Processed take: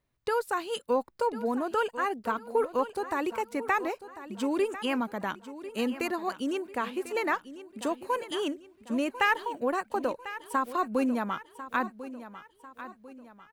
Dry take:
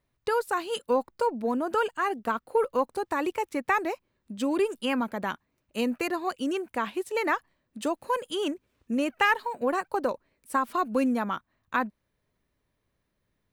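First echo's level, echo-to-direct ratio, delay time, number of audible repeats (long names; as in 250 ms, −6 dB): −14.0 dB, −13.0 dB, 1,046 ms, 3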